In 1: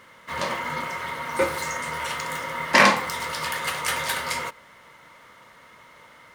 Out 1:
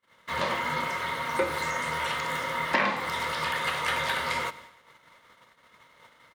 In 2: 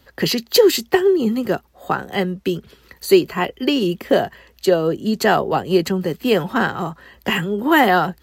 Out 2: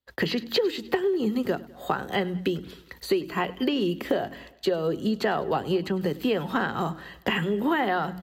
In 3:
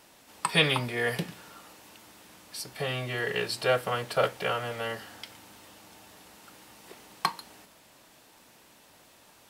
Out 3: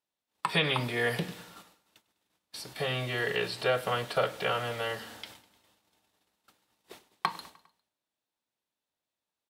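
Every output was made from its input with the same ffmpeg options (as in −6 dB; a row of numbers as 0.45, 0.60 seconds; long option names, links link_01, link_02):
-filter_complex "[0:a]equalizer=frequency=3700:width_type=o:width=0.41:gain=5,acrossover=split=3300[link_01][link_02];[link_02]acompressor=threshold=-40dB:ratio=4:attack=1:release=60[link_03];[link_01][link_03]amix=inputs=2:normalize=0,bandreject=frequency=45.89:width_type=h:width=4,bandreject=frequency=91.78:width_type=h:width=4,bandreject=frequency=137.67:width_type=h:width=4,bandreject=frequency=183.56:width_type=h:width=4,bandreject=frequency=229.45:width_type=h:width=4,bandreject=frequency=275.34:width_type=h:width=4,bandreject=frequency=321.23:width_type=h:width=4,acompressor=threshold=-22dB:ratio=6,agate=range=-34dB:threshold=-48dB:ratio=16:detection=peak,aecho=1:1:101|202|303|404:0.0944|0.0529|0.0296|0.0166"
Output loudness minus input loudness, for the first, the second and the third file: −4.0, −8.5, −1.5 LU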